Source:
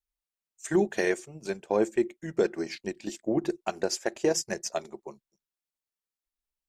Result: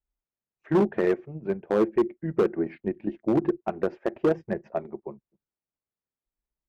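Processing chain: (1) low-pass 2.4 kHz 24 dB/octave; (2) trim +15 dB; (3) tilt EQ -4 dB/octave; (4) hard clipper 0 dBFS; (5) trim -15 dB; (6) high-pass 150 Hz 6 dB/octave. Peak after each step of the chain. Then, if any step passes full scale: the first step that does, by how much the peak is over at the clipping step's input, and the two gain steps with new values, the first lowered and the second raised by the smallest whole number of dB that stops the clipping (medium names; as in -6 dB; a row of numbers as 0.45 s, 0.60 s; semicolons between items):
-13.5 dBFS, +1.5 dBFS, +7.5 dBFS, 0.0 dBFS, -15.0 dBFS, -12.0 dBFS; step 2, 7.5 dB; step 2 +7 dB, step 5 -7 dB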